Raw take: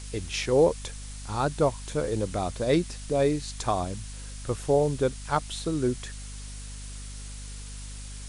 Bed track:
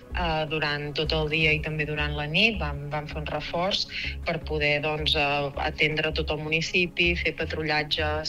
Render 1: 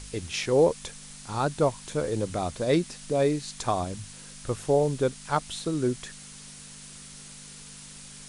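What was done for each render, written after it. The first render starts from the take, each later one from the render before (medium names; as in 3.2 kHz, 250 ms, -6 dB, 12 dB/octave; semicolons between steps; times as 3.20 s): de-hum 50 Hz, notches 2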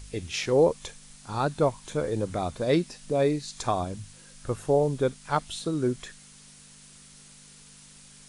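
noise print and reduce 6 dB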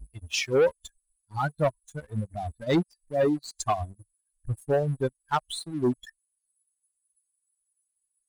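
expander on every frequency bin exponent 3; waveshaping leveller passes 2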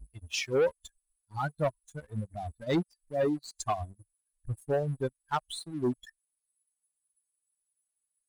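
trim -4.5 dB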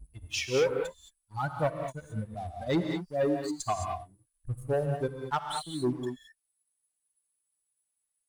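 gated-style reverb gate 240 ms rising, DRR 3.5 dB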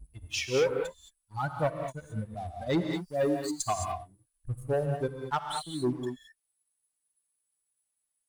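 2.93–3.92 s: treble shelf 6.1 kHz +9 dB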